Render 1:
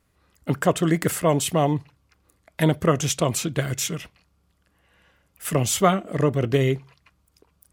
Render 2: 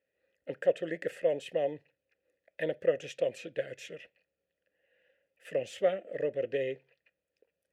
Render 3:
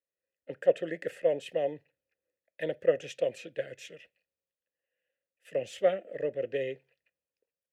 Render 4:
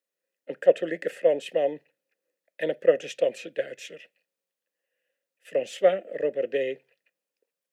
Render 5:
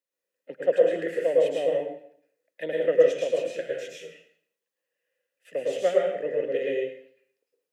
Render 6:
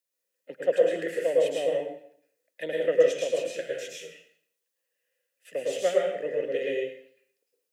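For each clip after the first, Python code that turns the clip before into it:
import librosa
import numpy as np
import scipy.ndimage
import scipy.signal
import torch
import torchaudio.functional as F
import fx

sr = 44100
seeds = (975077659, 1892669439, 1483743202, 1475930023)

y1 = fx.vowel_filter(x, sr, vowel='e')
y2 = fx.band_widen(y1, sr, depth_pct=40)
y3 = scipy.signal.sosfilt(scipy.signal.butter(4, 180.0, 'highpass', fs=sr, output='sos'), y2)
y3 = F.gain(torch.from_numpy(y3), 5.5).numpy()
y4 = fx.rev_plate(y3, sr, seeds[0], rt60_s=0.61, hf_ratio=0.9, predelay_ms=95, drr_db=-3.0)
y4 = F.gain(torch.from_numpy(y4), -5.0).numpy()
y5 = fx.high_shelf(y4, sr, hz=3400.0, db=9.5)
y5 = F.gain(torch.from_numpy(y5), -2.0).numpy()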